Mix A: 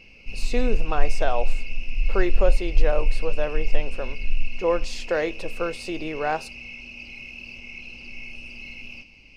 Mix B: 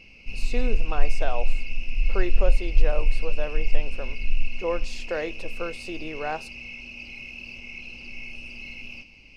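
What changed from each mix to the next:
speech −5.0 dB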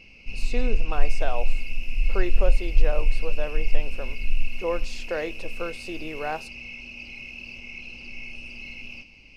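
second sound: unmuted

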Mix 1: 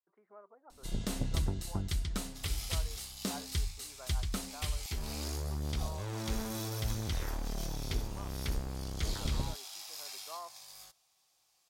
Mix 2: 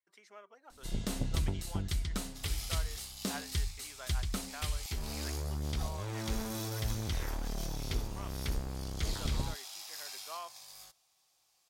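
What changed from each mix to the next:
speech: remove low-pass filter 1,200 Hz 24 dB per octave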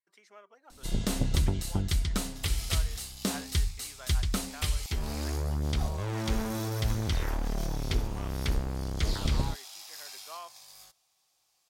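first sound +6.0 dB

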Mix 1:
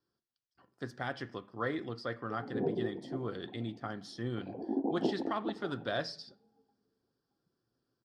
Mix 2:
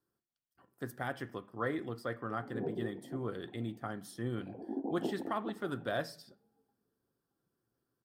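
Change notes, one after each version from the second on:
speech: remove low-pass with resonance 4,900 Hz, resonance Q 2.7
background −5.0 dB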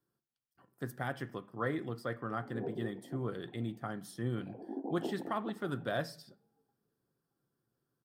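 speech: add parametric band 140 Hz +13 dB 1.1 octaves
master: add parametric band 110 Hz −8.5 dB 2 octaves

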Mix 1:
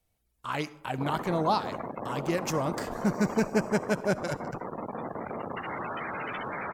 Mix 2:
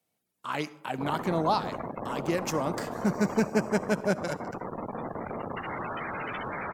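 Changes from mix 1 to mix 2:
speech: add high-pass filter 160 Hz 24 dB per octave
master: add low-shelf EQ 74 Hz +10 dB

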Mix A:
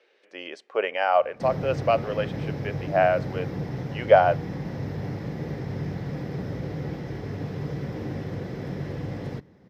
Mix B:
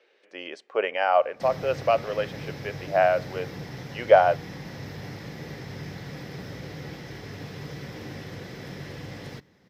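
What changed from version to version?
background: add tilt shelving filter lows −7.5 dB, about 1,400 Hz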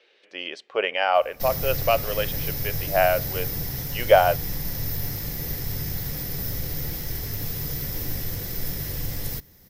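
speech: add low-pass with resonance 3,400 Hz, resonance Q 1.7
master: remove band-pass filter 160–3,000 Hz

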